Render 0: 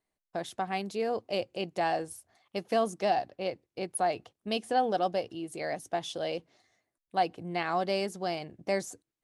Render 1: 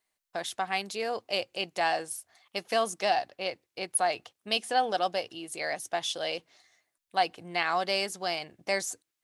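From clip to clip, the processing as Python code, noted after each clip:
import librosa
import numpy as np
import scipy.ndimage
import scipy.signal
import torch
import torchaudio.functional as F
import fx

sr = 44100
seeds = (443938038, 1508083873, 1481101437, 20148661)

y = fx.tilt_shelf(x, sr, db=-8.0, hz=660.0)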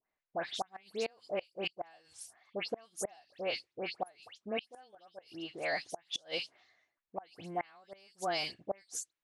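y = fx.env_lowpass(x, sr, base_hz=1900.0, full_db=-25.0)
y = fx.dispersion(y, sr, late='highs', ms=112.0, hz=2400.0)
y = fx.gate_flip(y, sr, shuts_db=-22.0, range_db=-30)
y = y * 10.0 ** (-1.5 / 20.0)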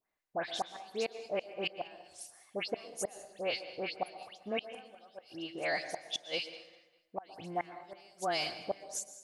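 y = fx.echo_feedback(x, sr, ms=198, feedback_pct=33, wet_db=-19.5)
y = fx.rev_plate(y, sr, seeds[0], rt60_s=0.95, hf_ratio=0.7, predelay_ms=105, drr_db=12.0)
y = y * 10.0 ** (1.0 / 20.0)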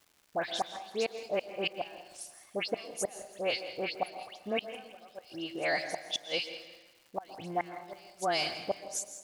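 y = fx.dmg_crackle(x, sr, seeds[1], per_s=400.0, level_db=-54.0)
y = fx.echo_feedback(y, sr, ms=164, feedback_pct=39, wet_db=-15)
y = y * 10.0 ** (3.0 / 20.0)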